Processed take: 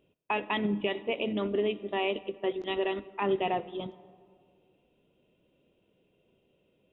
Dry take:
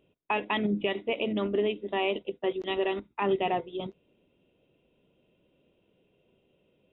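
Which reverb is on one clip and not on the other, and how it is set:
comb and all-pass reverb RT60 2.2 s, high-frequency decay 0.35×, pre-delay 25 ms, DRR 17.5 dB
level −1.5 dB

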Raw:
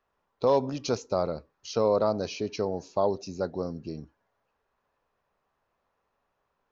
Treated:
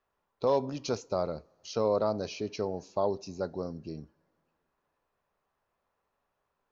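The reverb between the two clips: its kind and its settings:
coupled-rooms reverb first 0.28 s, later 2.4 s, from −21 dB, DRR 19 dB
level −3.5 dB

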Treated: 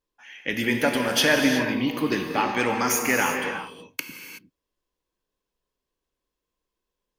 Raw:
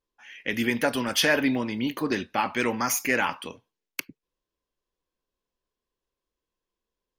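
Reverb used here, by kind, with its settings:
reverb whose tail is shaped and stops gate 400 ms flat, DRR 3 dB
level +1 dB

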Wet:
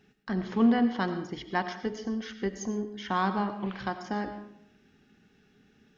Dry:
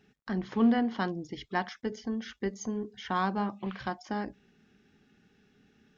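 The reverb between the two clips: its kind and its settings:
comb and all-pass reverb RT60 0.73 s, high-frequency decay 0.7×, pre-delay 50 ms, DRR 9 dB
level +1.5 dB

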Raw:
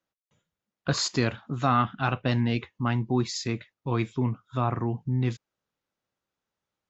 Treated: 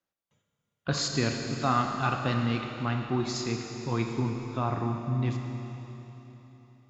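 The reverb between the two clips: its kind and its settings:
four-comb reverb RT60 3.6 s, combs from 27 ms, DRR 3 dB
level −3 dB

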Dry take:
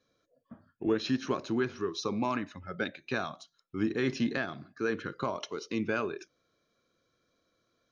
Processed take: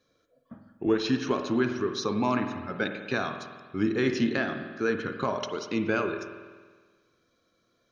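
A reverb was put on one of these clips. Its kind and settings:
spring reverb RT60 1.5 s, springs 48 ms, chirp 80 ms, DRR 6.5 dB
level +3.5 dB

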